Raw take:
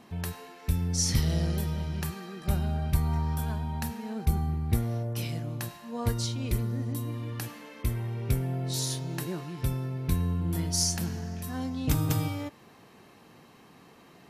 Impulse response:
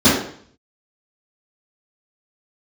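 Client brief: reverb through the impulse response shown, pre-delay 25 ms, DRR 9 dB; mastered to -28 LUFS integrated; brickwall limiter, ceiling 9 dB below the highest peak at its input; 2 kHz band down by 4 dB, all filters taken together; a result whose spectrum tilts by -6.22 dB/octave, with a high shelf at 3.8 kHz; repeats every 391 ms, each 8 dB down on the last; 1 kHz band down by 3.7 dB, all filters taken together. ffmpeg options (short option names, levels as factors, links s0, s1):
-filter_complex "[0:a]equalizer=f=1000:t=o:g=-4,equalizer=f=2000:t=o:g=-3,highshelf=f=3800:g=-3.5,alimiter=limit=0.0841:level=0:latency=1,aecho=1:1:391|782|1173|1564|1955:0.398|0.159|0.0637|0.0255|0.0102,asplit=2[s0][s1];[1:a]atrim=start_sample=2205,adelay=25[s2];[s1][s2]afir=irnorm=-1:irlink=0,volume=0.0211[s3];[s0][s3]amix=inputs=2:normalize=0,volume=1.26"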